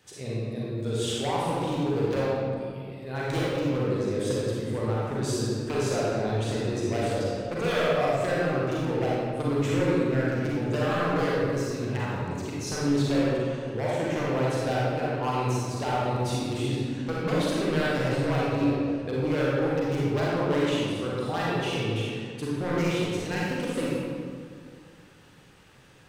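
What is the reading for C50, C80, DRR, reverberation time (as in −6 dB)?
−4.5 dB, −1.5 dB, −7.0 dB, 2.1 s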